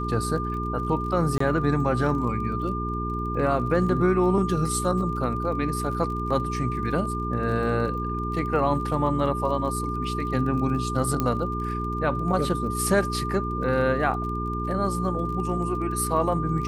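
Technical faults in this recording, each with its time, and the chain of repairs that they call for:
surface crackle 32 per second −35 dBFS
mains hum 60 Hz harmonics 7 −30 dBFS
whistle 1,200 Hz −30 dBFS
0:01.38–0:01.40: drop-out 24 ms
0:11.20: click −11 dBFS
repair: click removal
notch filter 1,200 Hz, Q 30
hum removal 60 Hz, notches 7
repair the gap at 0:01.38, 24 ms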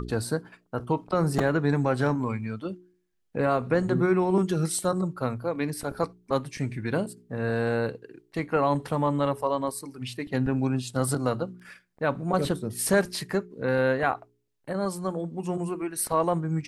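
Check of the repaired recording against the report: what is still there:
none of them is left

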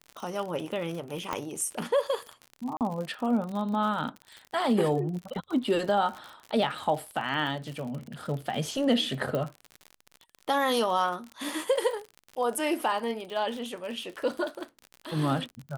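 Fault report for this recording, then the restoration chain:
surface crackle 55 per second −34 dBFS
0:01.33: click −15 dBFS
0:02.77–0:02.81: drop-out 38 ms
0:09.35: click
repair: click removal
repair the gap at 0:02.77, 38 ms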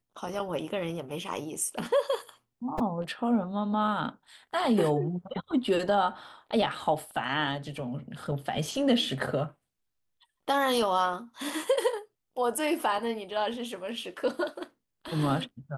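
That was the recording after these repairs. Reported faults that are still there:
0:01.33: click

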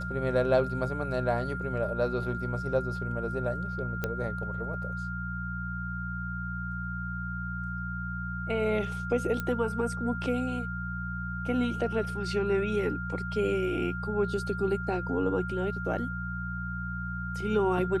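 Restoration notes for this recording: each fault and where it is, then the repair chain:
mains hum 60 Hz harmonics 3 −36 dBFS
whistle 1,400 Hz −36 dBFS
0:04.04: click −16 dBFS
0:09.40: click −18 dBFS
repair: click removal
hum removal 60 Hz, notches 3
notch filter 1,400 Hz, Q 30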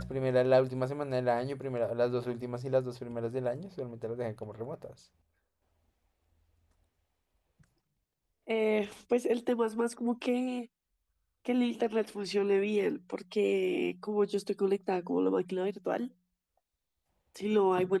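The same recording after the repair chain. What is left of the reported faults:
none of them is left

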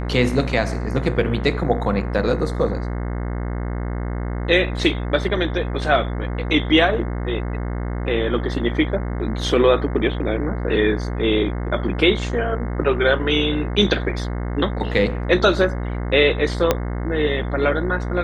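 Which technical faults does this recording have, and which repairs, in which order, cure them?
mains buzz 60 Hz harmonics 36 −25 dBFS
0:16.71: click −2 dBFS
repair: click removal
hum removal 60 Hz, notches 36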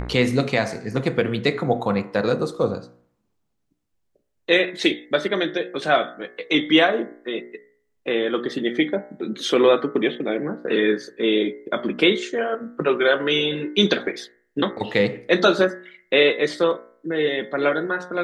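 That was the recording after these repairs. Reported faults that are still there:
0:16.71: click

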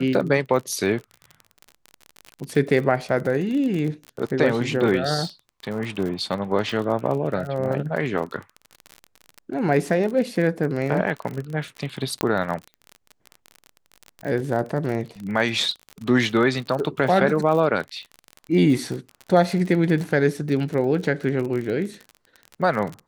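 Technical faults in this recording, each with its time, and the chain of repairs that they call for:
surface crackle 38 per second −28 dBFS
0:12.21: click −7 dBFS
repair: click removal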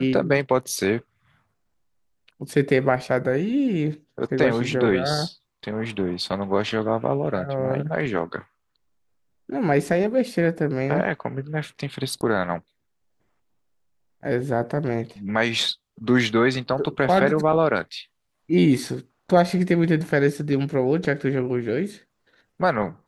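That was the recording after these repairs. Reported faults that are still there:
0:12.21: click

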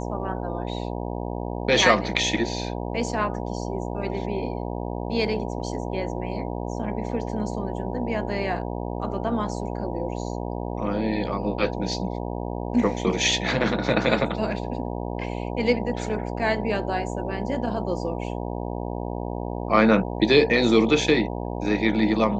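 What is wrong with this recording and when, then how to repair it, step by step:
mains buzz 60 Hz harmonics 16 −30 dBFS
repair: hum removal 60 Hz, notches 16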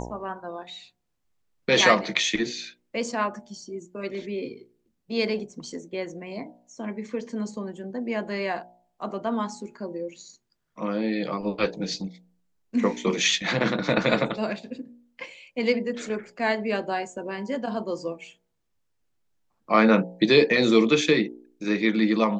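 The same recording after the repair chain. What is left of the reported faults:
none of them is left

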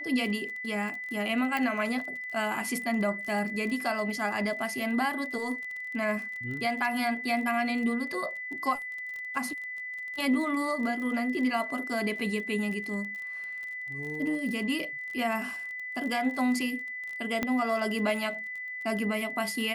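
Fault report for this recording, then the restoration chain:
surface crackle 31 per second −36 dBFS
whistle 2,000 Hz −35 dBFS
0:01.57: click −17 dBFS
0:17.43: click −14 dBFS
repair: click removal
notch filter 2,000 Hz, Q 30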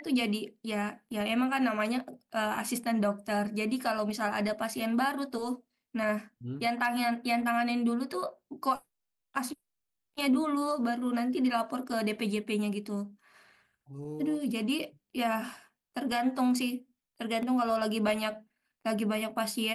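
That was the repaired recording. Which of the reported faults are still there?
0:01.57: click
0:17.43: click

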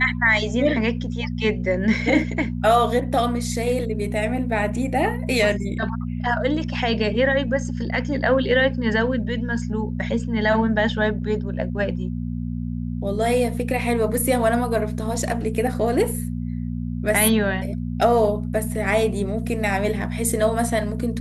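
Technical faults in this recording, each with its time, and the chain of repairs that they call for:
mains hum 60 Hz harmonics 4 −27 dBFS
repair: hum removal 60 Hz, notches 4

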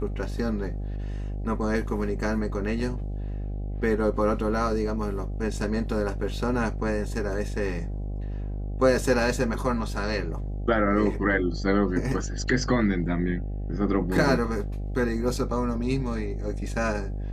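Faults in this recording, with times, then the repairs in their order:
mains buzz 50 Hz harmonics 16 −31 dBFS
0:05.57: drop-out 2.3 ms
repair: hum removal 50 Hz, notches 16
repair the gap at 0:05.57, 2.3 ms

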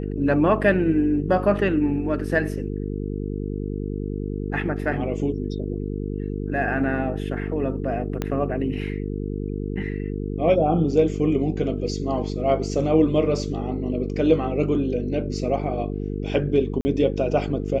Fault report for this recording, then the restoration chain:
mains buzz 50 Hz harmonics 9 −28 dBFS
0:08.22: click −12 dBFS
0:16.81–0:16.85: drop-out 40 ms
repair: click removal
hum removal 50 Hz, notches 9
repair the gap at 0:16.81, 40 ms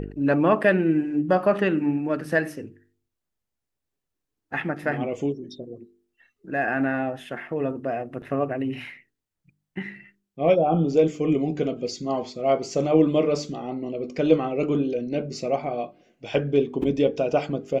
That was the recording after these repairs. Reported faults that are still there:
0:08.22: click

